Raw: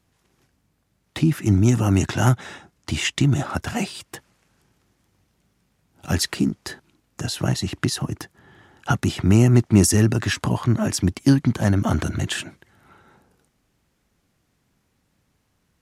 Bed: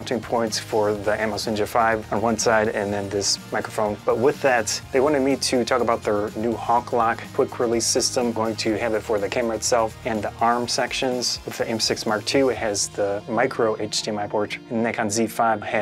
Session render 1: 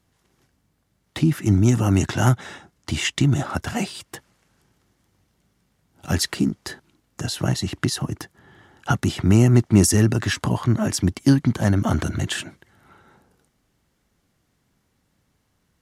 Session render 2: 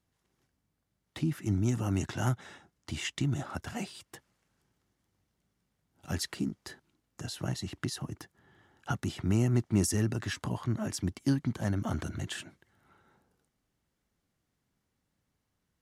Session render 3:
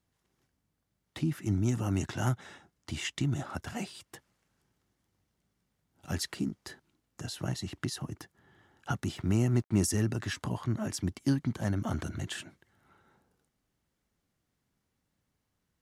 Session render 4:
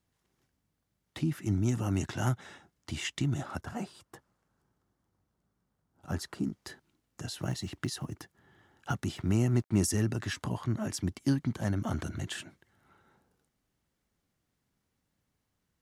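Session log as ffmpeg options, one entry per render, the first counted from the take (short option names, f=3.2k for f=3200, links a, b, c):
-af "bandreject=f=2.5k:w=19"
-af "volume=-12dB"
-filter_complex "[0:a]asettb=1/sr,asplit=3[a][b][c];[a]atrim=end=9.164[d];[b]atrim=start=9.16:end=9.82,asetpts=PTS-STARTPTS,afade=t=in:d=0.004:c=qsin,afade=t=out:st=0.656:d=0.004:c=qsin,aeval=exprs='sgn(val(0))*max(abs(val(0))-0.00119,0)':c=same[e];[c]atrim=start=9.816[f];[d][e]acrossfade=d=0.004:c1=hsin:c2=qsin[g];[g][f]acrossfade=d=0.004:c1=qsin:c2=hsin"
-filter_complex "[0:a]asettb=1/sr,asplit=3[a][b][c];[a]atrim=end=3.614[d];[b]atrim=start=3.61:end=6.44,asetpts=PTS-STARTPTS,afade=t=in:d=0.004:c=qsin,afade=t=out:st=2.826:d=0.004:c=qsin,highshelf=f=1.7k:t=q:w=1.5:g=-6.5[e];[c]atrim=start=6.436[f];[d][e]acrossfade=d=0.004:c1=hsin:c2=qsin[g];[g][f]acrossfade=d=0.004:c1=qsin:c2=hsin,asettb=1/sr,asplit=3[h][i][j];[h]atrim=end=7.414[k];[i]atrim=start=7.41:end=8.94,asetpts=PTS-STARTPTS,afade=t=in:d=0.004:c=qsin,afade=t=out:st=1.526:d=0.004:c=qsin,acrusher=bits=9:mode=log:mix=0:aa=0.000001[l];[j]atrim=start=8.936[m];[k][l]acrossfade=d=0.004:c1=hsin:c2=qsin[n];[n][m]acrossfade=d=0.004:c1=qsin:c2=hsin"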